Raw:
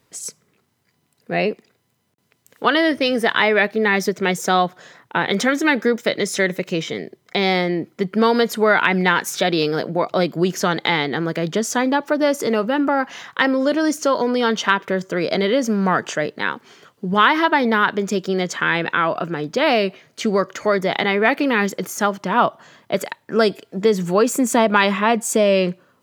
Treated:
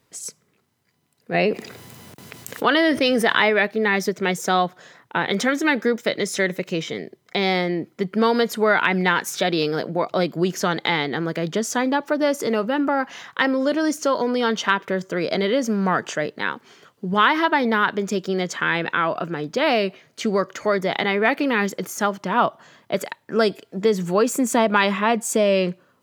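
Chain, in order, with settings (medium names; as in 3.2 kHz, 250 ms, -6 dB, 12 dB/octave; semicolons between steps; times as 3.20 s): 1.34–3.50 s: level flattener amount 50%; trim -2.5 dB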